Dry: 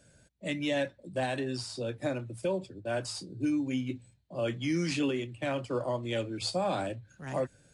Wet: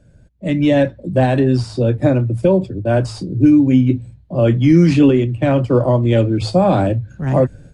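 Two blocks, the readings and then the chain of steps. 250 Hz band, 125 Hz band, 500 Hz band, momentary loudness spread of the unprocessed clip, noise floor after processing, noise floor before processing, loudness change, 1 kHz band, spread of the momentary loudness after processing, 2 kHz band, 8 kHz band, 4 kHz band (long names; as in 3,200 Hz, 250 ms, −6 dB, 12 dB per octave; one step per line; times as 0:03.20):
+19.5 dB, +23.5 dB, +16.5 dB, 7 LU, −48 dBFS, −64 dBFS, +18.0 dB, +14.0 dB, 8 LU, +9.5 dB, can't be measured, +6.0 dB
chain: spectral tilt −3.5 dB per octave
automatic gain control gain up to 10.5 dB
level +3 dB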